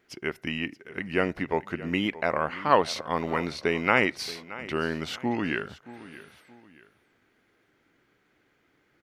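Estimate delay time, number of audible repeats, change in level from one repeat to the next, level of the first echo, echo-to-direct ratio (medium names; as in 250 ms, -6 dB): 625 ms, 2, -9.0 dB, -17.0 dB, -16.5 dB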